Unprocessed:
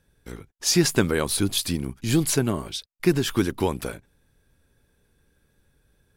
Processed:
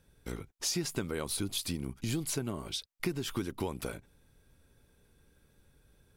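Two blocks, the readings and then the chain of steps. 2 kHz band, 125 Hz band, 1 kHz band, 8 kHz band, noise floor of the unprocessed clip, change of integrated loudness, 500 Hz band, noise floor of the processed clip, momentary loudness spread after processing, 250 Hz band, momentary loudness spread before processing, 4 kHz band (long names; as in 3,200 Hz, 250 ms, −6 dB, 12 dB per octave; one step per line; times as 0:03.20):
−12.0 dB, −11.5 dB, −11.0 dB, −10.0 dB, −68 dBFS, −12.0 dB, −12.5 dB, −68 dBFS, 9 LU, −12.5 dB, 16 LU, −9.5 dB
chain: notch filter 1,700 Hz, Q 11
downward compressor 4 to 1, threshold −33 dBFS, peak gain reduction 16 dB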